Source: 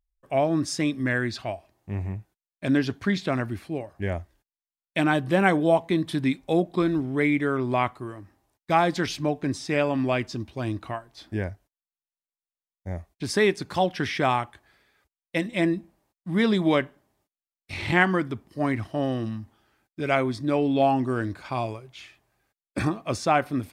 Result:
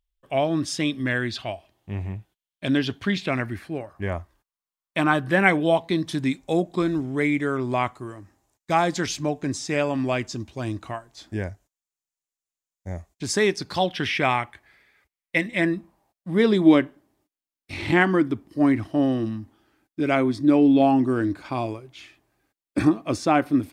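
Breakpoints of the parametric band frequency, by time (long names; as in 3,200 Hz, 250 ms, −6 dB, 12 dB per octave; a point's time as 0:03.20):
parametric band +10 dB 0.52 octaves
0:03.04 3,200 Hz
0:04.02 1,100 Hz
0:05.08 1,100 Hz
0:06.19 7,000 Hz
0:13.38 7,000 Hz
0:14.31 2,100 Hz
0:15.49 2,100 Hz
0:16.61 300 Hz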